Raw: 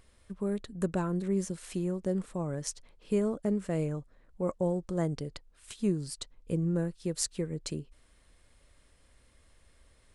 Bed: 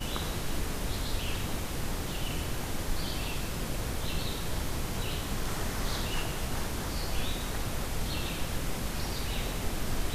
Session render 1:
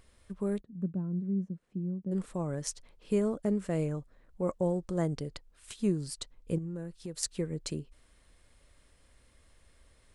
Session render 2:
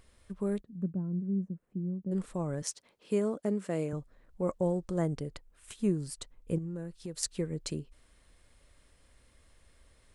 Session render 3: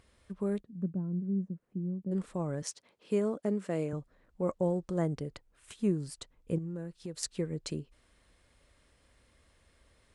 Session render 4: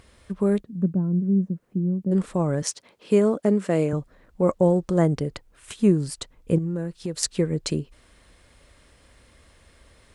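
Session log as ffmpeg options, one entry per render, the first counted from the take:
ffmpeg -i in.wav -filter_complex "[0:a]asplit=3[link_01][link_02][link_03];[link_01]afade=type=out:start_time=0.6:duration=0.02[link_04];[link_02]bandpass=frequency=190:width_type=q:width=2.3,afade=type=in:start_time=0.6:duration=0.02,afade=type=out:start_time=2.11:duration=0.02[link_05];[link_03]afade=type=in:start_time=2.11:duration=0.02[link_06];[link_04][link_05][link_06]amix=inputs=3:normalize=0,asettb=1/sr,asplit=3[link_07][link_08][link_09];[link_07]atrim=end=6.584[link_10];[link_08]atrim=start=6.58:end=7.23,asetpts=PTS-STARTPTS,afade=type=in:duration=0.004:curve=qsin,afade=type=out:start_time=0.646:duration=0.004:curve=qsin,acompressor=threshold=-39dB:ratio=2.5:attack=3.2:release=140:knee=1:detection=peak[link_11];[link_09]atrim=start=7.226[link_12];[link_10][link_11]acrossfade=duration=0.004:curve1=hsin:curve2=qsin[link_13];[link_13][link_12]acrossfade=duration=0.004:curve1=qsin:curve2=hsin" out.wav
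ffmpeg -i in.wav -filter_complex "[0:a]asettb=1/sr,asplit=3[link_01][link_02][link_03];[link_01]atrim=end=0.904[link_04];[link_02]atrim=start=0.9:end=2.1,asetpts=PTS-STARTPTS,afade=type=in:duration=0.004:curve=qsin,afade=type=out:start_time=1.196:duration=0.004:curve=qsin,equalizer=frequency=4400:width_type=o:width=2.3:gain=-12[link_05];[link_03]atrim=start=2.096[link_06];[link_04][link_05]acrossfade=duration=0.004:curve1=hsin:curve2=qsin[link_07];[link_07][link_06]acrossfade=duration=0.004:curve1=qsin:curve2=hsin,asettb=1/sr,asplit=3[link_08][link_09][link_10];[link_08]atrim=end=2.624[link_11];[link_09]atrim=start=2.62:end=3.93,asetpts=PTS-STARTPTS,afade=type=in:duration=0.004:curve=qsin,afade=type=out:start_time=1.306:duration=0.004:curve=qsin,highpass=190[link_12];[link_10]atrim=start=3.926[link_13];[link_11][link_12]acrossfade=duration=0.004:curve1=hsin:curve2=qsin[link_14];[link_14][link_13]acrossfade=duration=0.004:curve1=qsin:curve2=hsin,asettb=1/sr,asplit=3[link_15][link_16][link_17];[link_15]atrim=end=4.994[link_18];[link_16]atrim=start=4.99:end=6.56,asetpts=PTS-STARTPTS,afade=type=in:duration=0.004:curve=qsin,afade=type=out:start_time=1.566:duration=0.004:curve=qsin,equalizer=frequency=4500:width_type=o:width=1:gain=-5.5[link_19];[link_17]atrim=start=6.556[link_20];[link_18][link_19]acrossfade=duration=0.004:curve1=hsin:curve2=qsin[link_21];[link_21][link_20]acrossfade=duration=0.004:curve1=qsin:curve2=hsin" out.wav
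ffmpeg -i in.wav -af "highpass=frequency=57:poles=1,highshelf=frequency=9300:gain=-9" out.wav
ffmpeg -i in.wav -af "volume=11dB" out.wav

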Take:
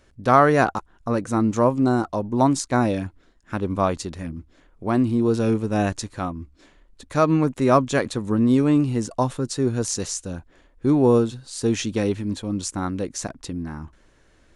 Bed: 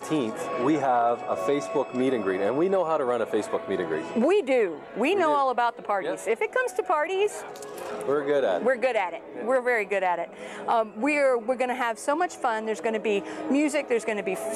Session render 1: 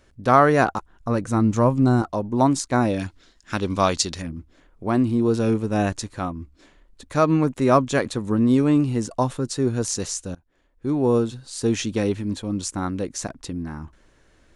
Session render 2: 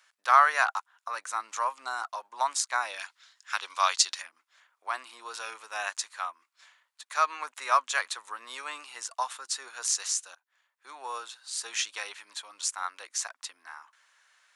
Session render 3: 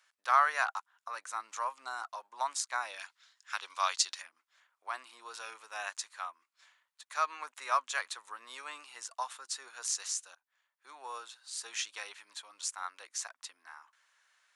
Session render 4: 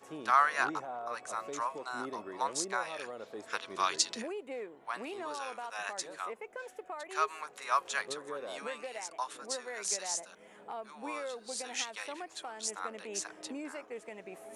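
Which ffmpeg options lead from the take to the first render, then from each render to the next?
ffmpeg -i in.wav -filter_complex "[0:a]asettb=1/sr,asplit=3[link_01][link_02][link_03];[link_01]atrim=end=0.754[link_04];[link_02]atrim=start=0.75:end=2.02,asetpts=PTS-STARTPTS,afade=type=in:duration=0.004:curve=qsin,afade=type=out:start_time=1.266:duration=0.004:curve=qsin,asubboost=boost=5.5:cutoff=210[link_05];[link_03]atrim=start=2.016[link_06];[link_04][link_05]acrossfade=duration=0.004:curve1=hsin:curve2=qsin[link_07];[link_07][link_06]acrossfade=duration=0.004:curve1=qsin:curve2=hsin,asettb=1/sr,asplit=3[link_08][link_09][link_10];[link_08]atrim=end=2.994[link_11];[link_09]atrim=start=2.99:end=4.22,asetpts=PTS-STARTPTS,afade=type=in:duration=0.004:curve=qsin,afade=type=out:start_time=1.226:duration=0.004:curve=qsin,equalizer=frequency=5000:width=0.52:gain=14[link_12];[link_10]atrim=start=4.216[link_13];[link_11][link_12]acrossfade=duration=0.004:curve1=hsin:curve2=qsin[link_14];[link_14][link_13]acrossfade=duration=0.004:curve1=qsin:curve2=hsin,asplit=2[link_15][link_16];[link_15]atrim=end=10.35,asetpts=PTS-STARTPTS,afade=type=out:start_time=10.346:duration=0.004:curve=hsin:silence=0.0707946[link_17];[link_16]atrim=start=10.35,asetpts=PTS-STARTPTS,afade=type=in:duration=1.06:silence=0.0707946[link_18];[link_17][link_18]concat=n=2:v=0:a=1" out.wav
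ffmpeg -i in.wav -af "highpass=frequency=1000:width=0.5412,highpass=frequency=1000:width=1.3066" out.wav
ffmpeg -i in.wav -af "volume=-6dB" out.wav
ffmpeg -i in.wav -i bed.wav -filter_complex "[1:a]volume=-18.5dB[link_01];[0:a][link_01]amix=inputs=2:normalize=0" out.wav

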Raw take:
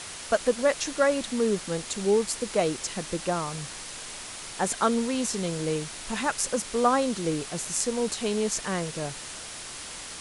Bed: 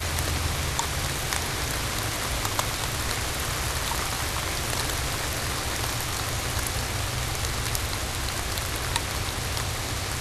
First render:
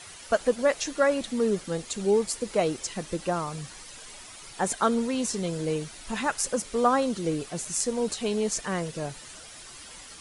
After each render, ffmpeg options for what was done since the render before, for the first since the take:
ffmpeg -i in.wav -af "afftdn=noise_reduction=10:noise_floor=-40" out.wav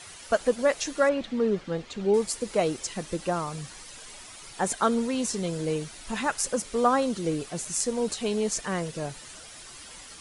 ffmpeg -i in.wav -filter_complex "[0:a]asettb=1/sr,asplit=3[link_01][link_02][link_03];[link_01]atrim=end=1.094[link_04];[link_02]atrim=start=1.09:end=2.14,asetpts=PTS-STARTPTS,afade=type=in:duration=0.004:curve=qsin,afade=type=out:start_time=1.046:duration=0.004:curve=qsin,lowpass=3500[link_05];[link_03]atrim=start=2.136[link_06];[link_04][link_05]acrossfade=duration=0.004:curve1=hsin:curve2=qsin[link_07];[link_07][link_06]acrossfade=duration=0.004:curve1=qsin:curve2=hsin" out.wav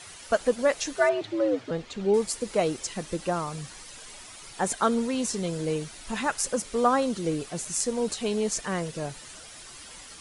ffmpeg -i in.wav -filter_complex "[0:a]asettb=1/sr,asplit=3[link_01][link_02][link_03];[link_01]atrim=end=0.964[link_04];[link_02]atrim=start=0.96:end=1.71,asetpts=PTS-STARTPTS,afade=type=in:duration=0.004:curve=qsin,afade=type=out:start_time=0.746:duration=0.004:curve=qsin,afreqshift=93[link_05];[link_03]atrim=start=1.706[link_06];[link_04][link_05]acrossfade=duration=0.004:curve1=hsin:curve2=qsin[link_07];[link_07][link_06]acrossfade=duration=0.004:curve1=qsin:curve2=hsin" out.wav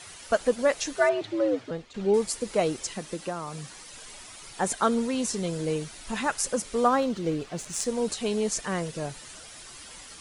ffmpeg -i in.wav -filter_complex "[0:a]asettb=1/sr,asplit=3[link_01][link_02][link_03];[link_01]atrim=end=2.944[link_04];[link_02]atrim=start=2.94:end=3.93,asetpts=PTS-STARTPTS,afade=type=in:duration=0.004:curve=qsin,afade=type=out:start_time=0.986:duration=0.004:curve=qsin,acrossover=split=120|1300[link_05][link_06][link_07];[link_05]acompressor=threshold=-59dB:ratio=4[link_08];[link_06]acompressor=threshold=-30dB:ratio=4[link_09];[link_07]acompressor=threshold=-41dB:ratio=4[link_10];[link_08][link_09][link_10]amix=inputs=3:normalize=0[link_11];[link_03]atrim=start=3.926[link_12];[link_04][link_11]acrossfade=duration=0.004:curve1=hsin:curve2=qsin[link_13];[link_13][link_12]acrossfade=duration=0.004:curve1=qsin:curve2=hsin,asettb=1/sr,asplit=3[link_14][link_15][link_16];[link_14]atrim=end=6.884[link_17];[link_15]atrim=start=6.88:end=7.85,asetpts=PTS-STARTPTS,afade=type=in:duration=0.004:curve=qsin,afade=type=out:start_time=0.966:duration=0.004:curve=qsin,adynamicsmooth=sensitivity=7:basefreq=4700[link_18];[link_16]atrim=start=7.846[link_19];[link_17][link_18]acrossfade=duration=0.004:curve1=hsin:curve2=qsin[link_20];[link_20][link_19]acrossfade=duration=0.004:curve1=qsin:curve2=hsin,asplit=2[link_21][link_22];[link_21]atrim=end=1.94,asetpts=PTS-STARTPTS,afade=type=out:start_time=1.42:duration=0.52:curve=qsin:silence=0.266073[link_23];[link_22]atrim=start=1.94,asetpts=PTS-STARTPTS,afade=type=in:duration=0.004:curve=hsin:silence=0.266073[link_24];[link_23][link_24]concat=n=2:v=0:a=1" out.wav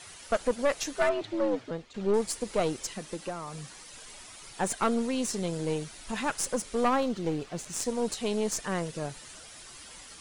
ffmpeg -i in.wav -af "aeval=exprs='(tanh(7.94*val(0)+0.55)-tanh(0.55))/7.94':channel_layout=same" out.wav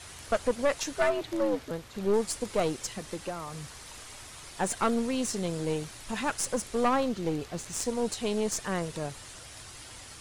ffmpeg -i in.wav -i bed.wav -filter_complex "[1:a]volume=-23dB[link_01];[0:a][link_01]amix=inputs=2:normalize=0" out.wav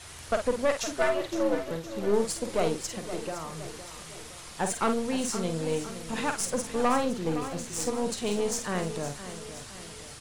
ffmpeg -i in.wav -filter_complex "[0:a]asplit=2[link_01][link_02];[link_02]adelay=49,volume=-7dB[link_03];[link_01][link_03]amix=inputs=2:normalize=0,asplit=2[link_04][link_05];[link_05]aecho=0:1:514|1028|1542|2056|2570:0.251|0.128|0.0653|0.0333|0.017[link_06];[link_04][link_06]amix=inputs=2:normalize=0" out.wav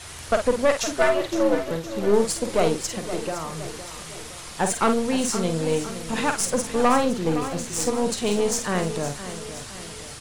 ffmpeg -i in.wav -af "volume=6dB" out.wav

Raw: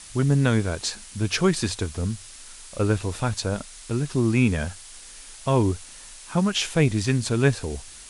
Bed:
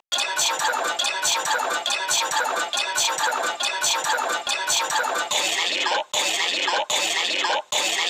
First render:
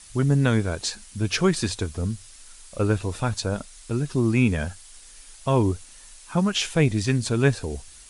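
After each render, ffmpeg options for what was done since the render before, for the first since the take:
ffmpeg -i in.wav -af "afftdn=noise_reduction=6:noise_floor=-44" out.wav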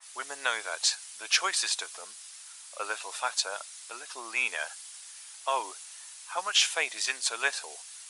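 ffmpeg -i in.wav -af "highpass=frequency=730:width=0.5412,highpass=frequency=730:width=1.3066,adynamicequalizer=threshold=0.01:dfrequency=2300:dqfactor=0.7:tfrequency=2300:tqfactor=0.7:attack=5:release=100:ratio=0.375:range=1.5:mode=boostabove:tftype=highshelf" out.wav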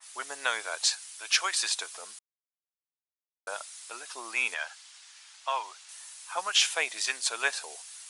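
ffmpeg -i in.wav -filter_complex "[0:a]asettb=1/sr,asplit=3[link_01][link_02][link_03];[link_01]atrim=end=0.984[link_04];[link_02]atrim=start=0.98:end=1.6,asetpts=PTS-STARTPTS,afade=type=in:duration=0.004:curve=qsin,afade=type=out:start_time=0.616:duration=0.004:curve=qsin,highpass=frequency=650:poles=1[link_05];[link_03]atrim=start=1.596[link_06];[link_04][link_05]acrossfade=duration=0.004:curve1=hsin:curve2=qsin[link_07];[link_07][link_06]acrossfade=duration=0.004:curve1=qsin:curve2=hsin,asettb=1/sr,asplit=3[link_08][link_09][link_10];[link_08]atrim=end=4.544[link_11];[link_09]atrim=start=4.54:end=5.89,asetpts=PTS-STARTPTS,afade=type=in:duration=0.004:curve=qsin,afade=type=out:start_time=1.346:duration=0.004:curve=qsin,highpass=730,lowpass=5400[link_12];[link_10]atrim=start=5.886[link_13];[link_11][link_12]acrossfade=duration=0.004:curve1=hsin:curve2=qsin[link_14];[link_14][link_13]acrossfade=duration=0.004:curve1=qsin:curve2=hsin,asplit=3[link_15][link_16][link_17];[link_15]atrim=end=2.19,asetpts=PTS-STARTPTS,afade=type=out:start_time=2.186:duration=0.004:curve=hsin[link_18];[link_16]atrim=start=2.19:end=3.47,asetpts=PTS-STARTPTS,volume=0[link_19];[link_17]atrim=start=3.47,asetpts=PTS-STARTPTS,afade=type=in:duration=0.004:curve=hsin[link_20];[link_18][link_19][link_20]concat=n=3:v=0:a=1" out.wav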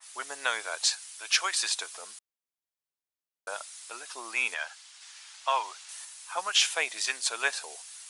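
ffmpeg -i in.wav -filter_complex "[0:a]asplit=3[link_01][link_02][link_03];[link_01]atrim=end=5.012[link_04];[link_02]atrim=start=5.008:end=6.052,asetpts=PTS-STARTPTS,volume=3.5dB[link_05];[link_03]atrim=start=6.048[link_06];[link_04][link_05]acrossfade=duration=0.004:curve1=hsin:curve2=hsin[link_07];[link_07][link_06]acrossfade=duration=0.004:curve1=hsin:curve2=hsin" out.wav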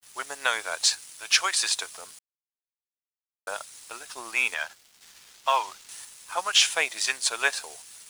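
ffmpeg -i in.wav -filter_complex "[0:a]asplit=2[link_01][link_02];[link_02]acrusher=bits=5:mode=log:mix=0:aa=0.000001,volume=-4dB[link_03];[link_01][link_03]amix=inputs=2:normalize=0,aeval=exprs='sgn(val(0))*max(abs(val(0))-0.00531,0)':channel_layout=same" out.wav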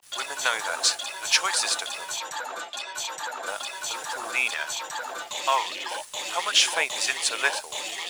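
ffmpeg -i in.wav -i bed.wav -filter_complex "[1:a]volume=-10.5dB[link_01];[0:a][link_01]amix=inputs=2:normalize=0" out.wav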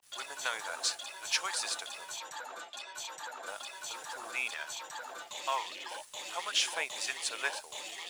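ffmpeg -i in.wav -af "volume=-10dB" out.wav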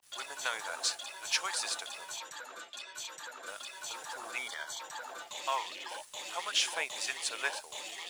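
ffmpeg -i in.wav -filter_complex "[0:a]asettb=1/sr,asplit=3[link_01][link_02][link_03];[link_01]atrim=end=2.244[link_04];[link_02]atrim=start=2.24:end=3.77,asetpts=PTS-STARTPTS,afade=type=in:duration=0.004:curve=qsin,afade=type=out:start_time=1.526:duration=0.004:curve=qsin,equalizer=frequency=800:width=2.3:gain=-9[link_05];[link_03]atrim=start=3.766[link_06];[link_04][link_05]acrossfade=duration=0.004:curve1=hsin:curve2=qsin[link_07];[link_07][link_06]acrossfade=duration=0.004:curve1=qsin:curve2=hsin,asettb=1/sr,asplit=3[link_08][link_09][link_10];[link_08]atrim=end=4.384[link_11];[link_09]atrim=start=4.38:end=4.8,asetpts=PTS-STARTPTS,afade=type=in:duration=0.004:curve=qsin,afade=type=out:start_time=0.416:duration=0.004:curve=qsin,asuperstop=centerf=2600:order=8:qfactor=4.7[link_12];[link_10]atrim=start=4.796[link_13];[link_11][link_12]acrossfade=duration=0.004:curve1=hsin:curve2=qsin[link_14];[link_14][link_13]acrossfade=duration=0.004:curve1=qsin:curve2=hsin" out.wav

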